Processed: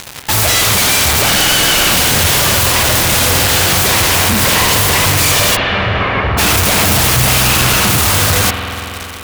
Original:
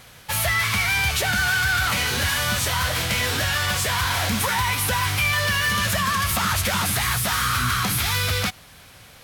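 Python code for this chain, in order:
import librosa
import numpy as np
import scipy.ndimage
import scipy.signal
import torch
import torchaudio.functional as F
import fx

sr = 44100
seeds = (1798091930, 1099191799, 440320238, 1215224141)

y = fx.self_delay(x, sr, depth_ms=0.64)
y = fx.fuzz(y, sr, gain_db=45.0, gate_db=-42.0)
y = fx.lowpass(y, sr, hz=fx.line((5.55, 3100.0), (6.37, 1800.0)), slope=24, at=(5.55, 6.37), fade=0.02)
y = fx.rev_spring(y, sr, rt60_s=3.6, pass_ms=(47,), chirp_ms=50, drr_db=3.5)
y = y * 10.0 ** (2.5 / 20.0)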